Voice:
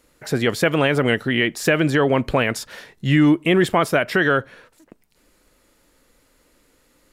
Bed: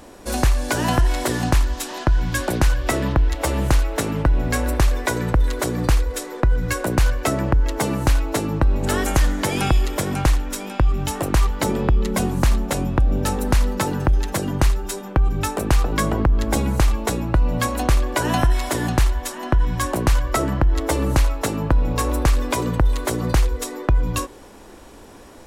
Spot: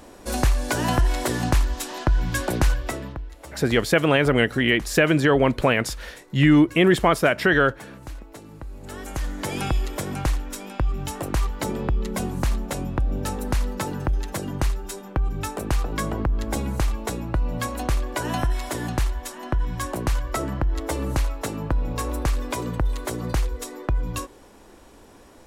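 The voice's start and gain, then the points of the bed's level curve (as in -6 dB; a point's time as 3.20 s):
3.30 s, -0.5 dB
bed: 2.71 s -2.5 dB
3.32 s -20 dB
8.69 s -20 dB
9.51 s -6 dB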